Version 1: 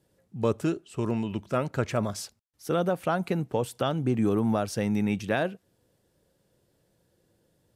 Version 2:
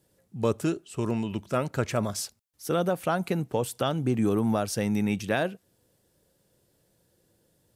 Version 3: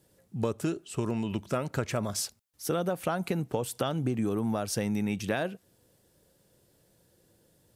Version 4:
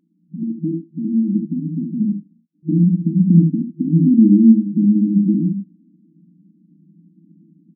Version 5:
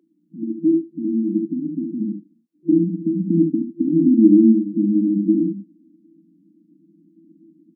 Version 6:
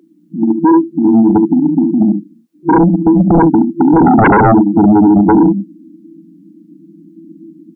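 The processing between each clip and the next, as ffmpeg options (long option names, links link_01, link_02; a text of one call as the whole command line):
ffmpeg -i in.wav -af "highshelf=frequency=5500:gain=7.5" out.wav
ffmpeg -i in.wav -af "acompressor=threshold=-29dB:ratio=4,volume=2.5dB" out.wav
ffmpeg -i in.wav -af "asubboost=boost=10:cutoff=230,afftfilt=real='re*between(b*sr/4096,160,340)':imag='im*between(b*sr/4096,160,340)':win_size=4096:overlap=0.75,aecho=1:1:40|70:0.316|0.562,volume=7dB" out.wav
ffmpeg -i in.wav -af "highpass=frequency=370:width_type=q:width=4.1" out.wav
ffmpeg -i in.wav -af "aeval=exprs='0.891*sin(PI/2*5.01*val(0)/0.891)':channel_layout=same,volume=-3dB" out.wav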